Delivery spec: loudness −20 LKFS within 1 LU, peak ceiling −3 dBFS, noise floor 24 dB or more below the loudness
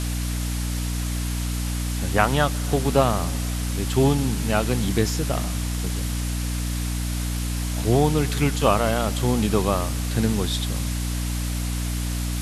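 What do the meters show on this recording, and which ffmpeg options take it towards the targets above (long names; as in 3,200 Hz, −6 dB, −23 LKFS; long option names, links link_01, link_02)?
mains hum 60 Hz; hum harmonics up to 300 Hz; level of the hum −24 dBFS; background noise floor −26 dBFS; target noise floor −48 dBFS; integrated loudness −24.0 LKFS; sample peak −2.0 dBFS; target loudness −20.0 LKFS
→ -af "bandreject=frequency=60:width_type=h:width=4,bandreject=frequency=120:width_type=h:width=4,bandreject=frequency=180:width_type=h:width=4,bandreject=frequency=240:width_type=h:width=4,bandreject=frequency=300:width_type=h:width=4"
-af "afftdn=noise_reduction=22:noise_floor=-26"
-af "volume=4dB,alimiter=limit=-3dB:level=0:latency=1"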